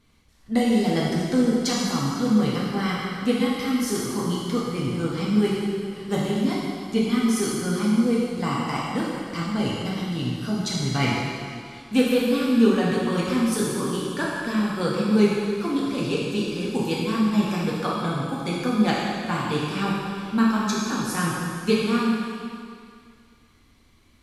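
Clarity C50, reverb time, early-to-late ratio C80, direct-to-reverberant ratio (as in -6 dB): -1.5 dB, 2.2 s, 0.0 dB, -6.0 dB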